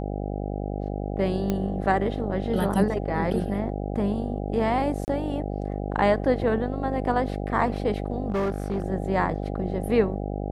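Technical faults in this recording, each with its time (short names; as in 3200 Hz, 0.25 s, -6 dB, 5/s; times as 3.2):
buzz 50 Hz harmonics 16 -30 dBFS
1.5 pop -13 dBFS
5.05–5.08 gap 29 ms
8.3–8.84 clipped -22 dBFS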